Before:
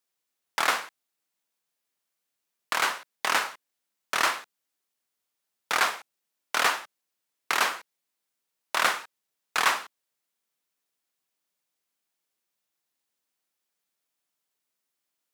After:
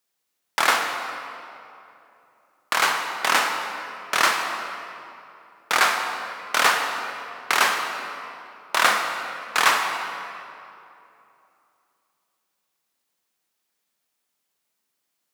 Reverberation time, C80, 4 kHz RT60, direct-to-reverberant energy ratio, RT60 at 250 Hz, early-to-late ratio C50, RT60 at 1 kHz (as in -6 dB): 2.8 s, 5.0 dB, 1.8 s, 3.0 dB, 2.9 s, 4.0 dB, 2.7 s